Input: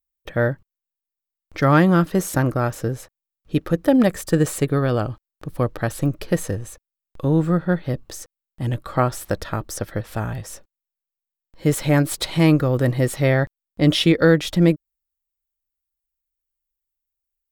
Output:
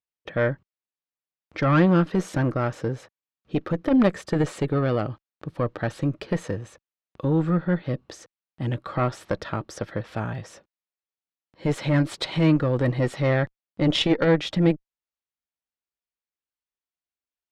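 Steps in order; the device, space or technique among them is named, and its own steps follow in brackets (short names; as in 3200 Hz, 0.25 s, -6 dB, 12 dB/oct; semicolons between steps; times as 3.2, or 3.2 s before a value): valve radio (BPF 120–4100 Hz; tube stage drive 9 dB, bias 0.55; core saturation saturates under 240 Hz); gain +2 dB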